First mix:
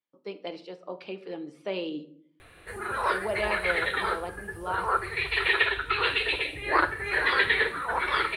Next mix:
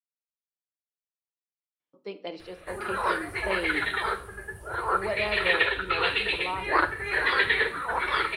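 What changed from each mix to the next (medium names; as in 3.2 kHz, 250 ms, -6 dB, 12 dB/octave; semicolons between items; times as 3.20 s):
speech: entry +1.80 s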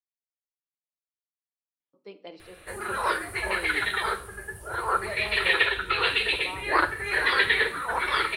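speech -6.5 dB; background: add treble shelf 4.5 kHz +8 dB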